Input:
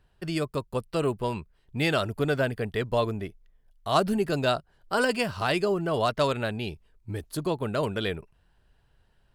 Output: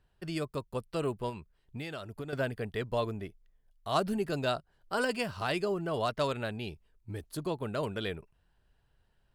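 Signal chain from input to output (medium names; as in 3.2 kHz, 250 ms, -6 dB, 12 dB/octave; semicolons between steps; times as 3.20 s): 1.29–2.33 s: compression 6:1, threshold -31 dBFS, peak gain reduction 10.5 dB; trim -6 dB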